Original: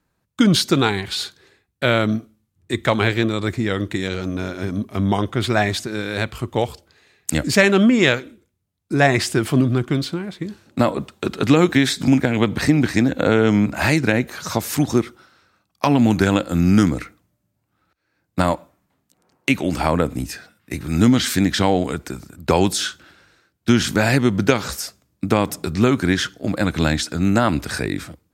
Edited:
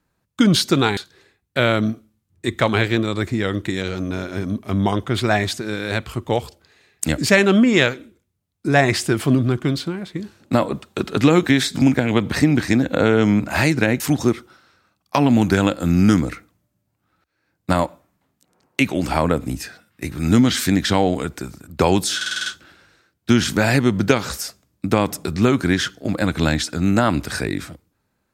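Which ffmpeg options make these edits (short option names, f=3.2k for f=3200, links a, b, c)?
-filter_complex "[0:a]asplit=9[a][b][c][d][e][f][g][h][i];[a]atrim=end=0.972[j];[b]atrim=start=1.228:end=14.262[k];[c]atrim=start=14.688:end=22.902[l];[d]atrim=start=22.848:end=22.902[m];[e]atrim=start=22.848:end=22.902[n];[f]atrim=start=22.848:end=22.902[o];[g]atrim=start=22.848:end=22.902[p];[h]atrim=start=22.848:end=22.902[q];[i]atrim=start=22.848[r];[j][k]acrossfade=d=0.004:c1=hsin:c2=hsin[s];[s][l]acrossfade=d=0.004:c1=hsin:c2=hsin[t];[t][m]acrossfade=d=0.004:c1=hsin:c2=hsin[u];[u][n]acrossfade=d=0.004:c1=hsin:c2=hsin[v];[v][o]acrossfade=d=0.004:c1=hsin:c2=hsin[w];[w][p]acrossfade=d=0.004:c1=hsin:c2=hsin[x];[x][q]acrossfade=d=0.004:c1=hsin:c2=hsin[y];[y][r]acrossfade=d=0.004:c1=hsin:c2=hsin"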